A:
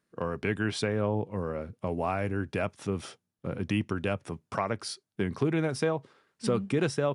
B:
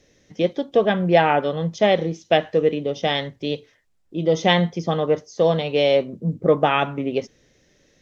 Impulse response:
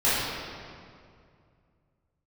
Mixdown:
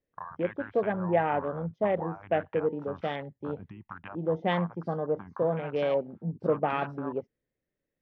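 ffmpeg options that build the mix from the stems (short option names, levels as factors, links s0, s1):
-filter_complex "[0:a]agate=range=0.0224:threshold=0.00112:ratio=3:detection=peak,lowshelf=f=640:t=q:w=3:g=-11,acompressor=threshold=0.0126:ratio=8,volume=1.26[s0];[1:a]volume=0.335[s1];[s0][s1]amix=inputs=2:normalize=0,afwtdn=0.0126,lowpass=2000"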